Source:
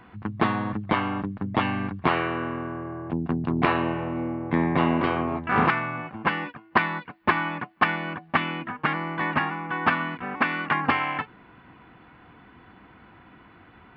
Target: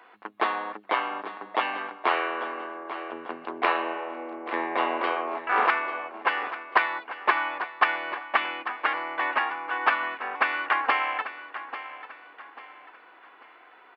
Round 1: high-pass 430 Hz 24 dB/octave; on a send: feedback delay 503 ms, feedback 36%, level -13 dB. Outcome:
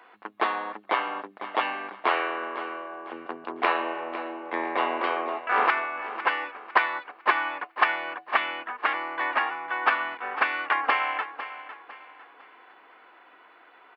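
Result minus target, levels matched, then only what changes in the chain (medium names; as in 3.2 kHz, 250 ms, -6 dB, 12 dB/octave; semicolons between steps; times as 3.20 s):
echo 339 ms early
change: feedback delay 842 ms, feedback 36%, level -13 dB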